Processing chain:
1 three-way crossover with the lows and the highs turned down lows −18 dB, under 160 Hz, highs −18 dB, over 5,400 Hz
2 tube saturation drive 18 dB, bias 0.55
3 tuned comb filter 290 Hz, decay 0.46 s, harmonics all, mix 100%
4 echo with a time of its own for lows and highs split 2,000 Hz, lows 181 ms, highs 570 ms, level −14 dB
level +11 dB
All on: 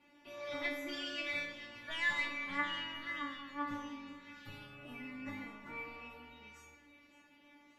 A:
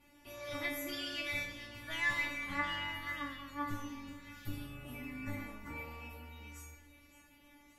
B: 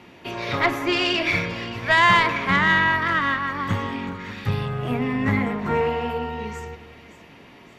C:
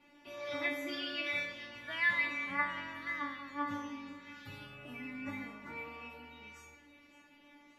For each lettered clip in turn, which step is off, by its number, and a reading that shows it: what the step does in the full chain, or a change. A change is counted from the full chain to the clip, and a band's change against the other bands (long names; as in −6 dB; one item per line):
1, 125 Hz band +9.5 dB
3, 125 Hz band +11.0 dB
2, 4 kHz band −3.5 dB